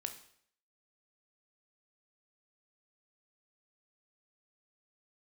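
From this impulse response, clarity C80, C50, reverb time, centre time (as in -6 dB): 14.0 dB, 11.0 dB, 0.60 s, 12 ms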